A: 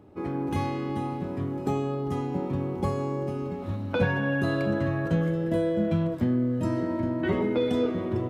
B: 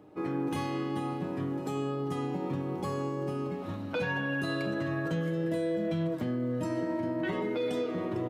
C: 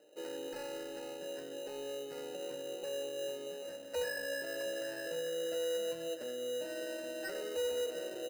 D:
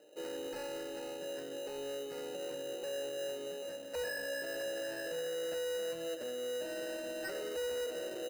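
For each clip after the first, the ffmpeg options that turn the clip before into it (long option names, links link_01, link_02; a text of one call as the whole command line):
ffmpeg -i in.wav -filter_complex "[0:a]highpass=frequency=230:poles=1,aecho=1:1:6.5:0.41,acrossover=split=2600[link_01][link_02];[link_01]alimiter=limit=-24dB:level=0:latency=1:release=108[link_03];[link_03][link_02]amix=inputs=2:normalize=0" out.wav
ffmpeg -i in.wav -filter_complex "[0:a]asplit=3[link_01][link_02][link_03];[link_01]bandpass=frequency=530:width_type=q:width=8,volume=0dB[link_04];[link_02]bandpass=frequency=1840:width_type=q:width=8,volume=-6dB[link_05];[link_03]bandpass=frequency=2480:width_type=q:width=8,volume=-9dB[link_06];[link_04][link_05][link_06]amix=inputs=3:normalize=0,asplit=2[link_07][link_08];[link_08]highpass=frequency=720:poles=1,volume=14dB,asoftclip=type=tanh:threshold=-28dB[link_09];[link_07][link_09]amix=inputs=2:normalize=0,lowpass=frequency=2200:poles=1,volume=-6dB,acrusher=samples=13:mix=1:aa=0.000001" out.wav
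ffmpeg -i in.wav -af "asoftclip=type=tanh:threshold=-36.5dB,volume=2.5dB" out.wav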